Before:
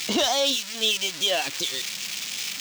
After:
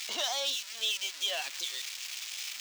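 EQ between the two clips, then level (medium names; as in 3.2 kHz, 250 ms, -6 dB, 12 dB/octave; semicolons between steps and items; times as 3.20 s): high-pass 760 Hz 12 dB/octave; -8.0 dB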